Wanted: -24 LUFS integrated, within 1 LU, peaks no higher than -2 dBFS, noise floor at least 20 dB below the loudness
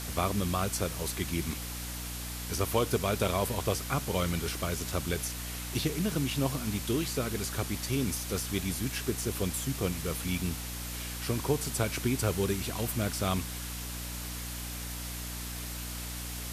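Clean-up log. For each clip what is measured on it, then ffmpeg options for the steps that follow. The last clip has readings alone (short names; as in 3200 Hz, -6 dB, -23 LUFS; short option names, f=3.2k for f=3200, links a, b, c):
hum 60 Hz; harmonics up to 300 Hz; hum level -38 dBFS; noise floor -38 dBFS; noise floor target -53 dBFS; loudness -32.5 LUFS; peak -13.0 dBFS; loudness target -24.0 LUFS
-> -af "bandreject=f=60:t=h:w=4,bandreject=f=120:t=h:w=4,bandreject=f=180:t=h:w=4,bandreject=f=240:t=h:w=4,bandreject=f=300:t=h:w=4"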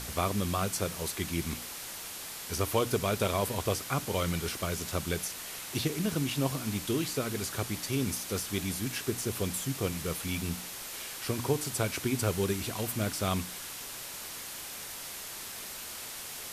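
hum none; noise floor -42 dBFS; noise floor target -53 dBFS
-> -af "afftdn=nr=11:nf=-42"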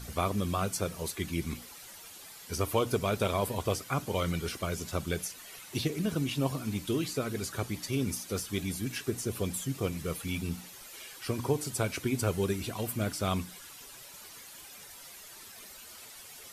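noise floor -49 dBFS; noise floor target -53 dBFS
-> -af "afftdn=nr=6:nf=-49"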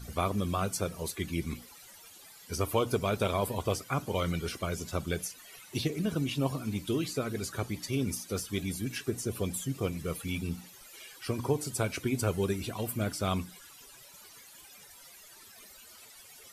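noise floor -53 dBFS; loudness -33.0 LUFS; peak -14.0 dBFS; loudness target -24.0 LUFS
-> -af "volume=9dB"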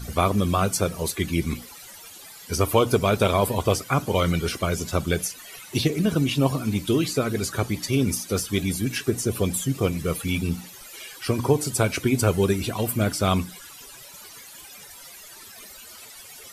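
loudness -24.0 LUFS; peak -5.0 dBFS; noise floor -44 dBFS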